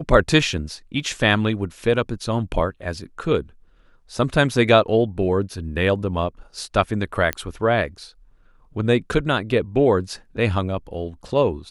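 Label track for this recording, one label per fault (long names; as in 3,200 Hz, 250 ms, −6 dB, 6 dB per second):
7.330000	7.330000	click −8 dBFS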